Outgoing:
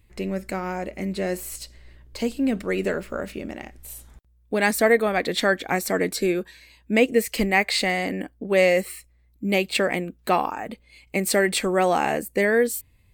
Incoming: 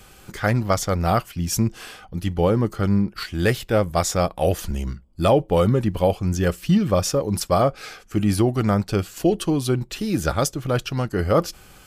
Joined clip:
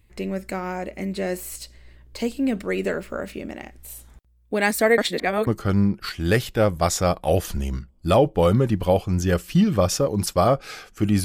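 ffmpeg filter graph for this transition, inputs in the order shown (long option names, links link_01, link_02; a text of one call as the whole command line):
ffmpeg -i cue0.wav -i cue1.wav -filter_complex "[0:a]apad=whole_dur=11.24,atrim=end=11.24,asplit=2[link_01][link_02];[link_01]atrim=end=4.982[link_03];[link_02]atrim=start=4.978:end=5.472,asetpts=PTS-STARTPTS,areverse[link_04];[1:a]atrim=start=2.608:end=8.38[link_05];[link_03][link_04]acrossfade=duration=0.004:curve1=hsin:curve2=hsin[link_06];[link_06][link_05]acrossfade=duration=0.004:curve1=hsin:curve2=hsin" out.wav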